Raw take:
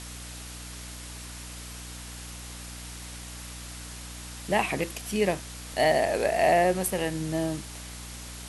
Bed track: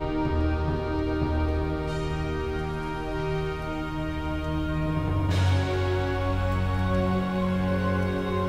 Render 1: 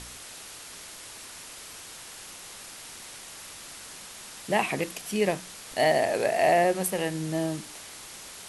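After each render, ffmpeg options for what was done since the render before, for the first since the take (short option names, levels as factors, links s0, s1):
-af "bandreject=f=60:t=h:w=4,bandreject=f=120:t=h:w=4,bandreject=f=180:t=h:w=4,bandreject=f=240:t=h:w=4,bandreject=f=300:t=h:w=4"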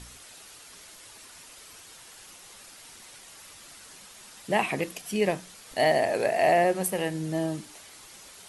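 -af "afftdn=nr=7:nf=-44"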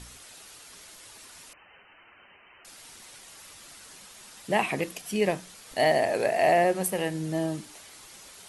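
-filter_complex "[0:a]asettb=1/sr,asplit=3[s0][s1][s2];[s0]atrim=end=1.534[s3];[s1]atrim=start=1.53:end=2.65,asetpts=PTS-STARTPTS,afade=t=in:d=0.004:c=qsin,afade=t=out:st=1.116:d=0.004:c=qsin,lowpass=f=2600:t=q:w=0.5098,lowpass=f=2600:t=q:w=0.6013,lowpass=f=2600:t=q:w=0.9,lowpass=f=2600:t=q:w=2.563,afreqshift=-3100[s4];[s2]atrim=start=2.646[s5];[s3][s4]acrossfade=d=0.004:c1=hsin:c2=qsin[s6];[s6][s5]acrossfade=d=0.004:c1=qsin:c2=hsin"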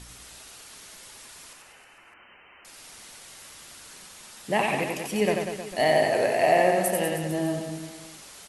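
-af "aecho=1:1:90|193.5|312.5|449.4|606.8:0.631|0.398|0.251|0.158|0.1"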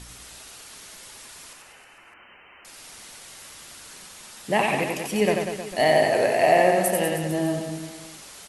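-af "volume=1.33"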